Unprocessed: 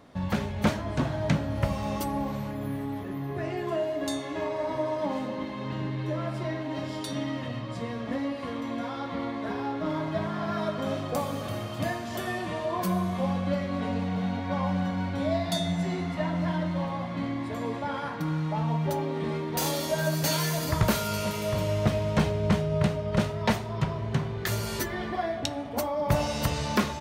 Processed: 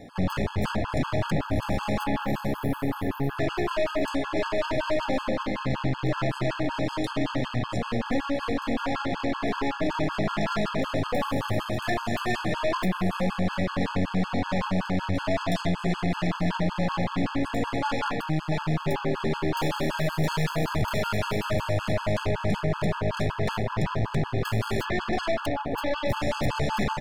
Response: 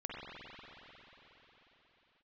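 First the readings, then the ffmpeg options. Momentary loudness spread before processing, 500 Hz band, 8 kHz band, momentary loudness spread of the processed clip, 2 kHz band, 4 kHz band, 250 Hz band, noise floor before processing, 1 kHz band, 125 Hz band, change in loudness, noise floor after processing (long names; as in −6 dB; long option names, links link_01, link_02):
7 LU, +1.5 dB, −6.0 dB, 2 LU, +4.5 dB, +1.0 dB, +1.0 dB, −35 dBFS, +2.5 dB, +0.5 dB, +1.5 dB, −37 dBFS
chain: -filter_complex "[0:a]acrossover=split=3000[link_01][link_02];[link_01]alimiter=limit=-23dB:level=0:latency=1:release=25[link_03];[link_02]acompressor=threshold=-52dB:ratio=16[link_04];[link_03][link_04]amix=inputs=2:normalize=0,aeval=exprs='0.0841*(cos(1*acos(clip(val(0)/0.0841,-1,1)))-cos(1*PI/2))+0.00473*(cos(3*acos(clip(val(0)/0.0841,-1,1)))-cos(3*PI/2))+0.0075*(cos(4*acos(clip(val(0)/0.0841,-1,1)))-cos(4*PI/2))+0.015*(cos(5*acos(clip(val(0)/0.0841,-1,1)))-cos(5*PI/2))+0.015*(cos(8*acos(clip(val(0)/0.0841,-1,1)))-cos(8*PI/2))':channel_layout=same,acontrast=70,bandreject=frequency=6000:width=20,afftfilt=real='re*gt(sin(2*PI*5.3*pts/sr)*(1-2*mod(floor(b*sr/1024/850),2)),0)':imag='im*gt(sin(2*PI*5.3*pts/sr)*(1-2*mod(floor(b*sr/1024/850),2)),0)':win_size=1024:overlap=0.75,volume=-1.5dB"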